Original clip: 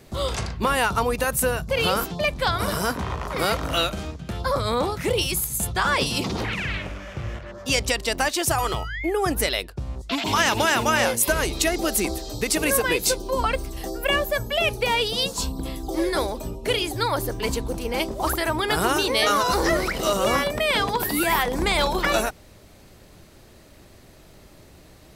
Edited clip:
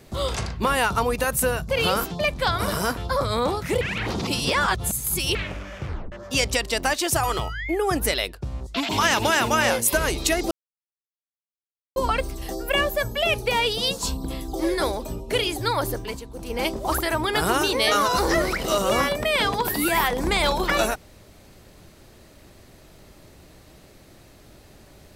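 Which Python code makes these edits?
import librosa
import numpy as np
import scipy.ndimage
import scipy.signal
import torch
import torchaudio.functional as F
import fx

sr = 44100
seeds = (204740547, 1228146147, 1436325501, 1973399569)

y = fx.edit(x, sr, fx.cut(start_s=2.97, length_s=1.35),
    fx.reverse_span(start_s=5.16, length_s=1.54),
    fx.tape_stop(start_s=7.2, length_s=0.27),
    fx.silence(start_s=11.86, length_s=1.45),
    fx.fade_down_up(start_s=17.27, length_s=0.67, db=-11.5, fade_s=0.27), tone=tone)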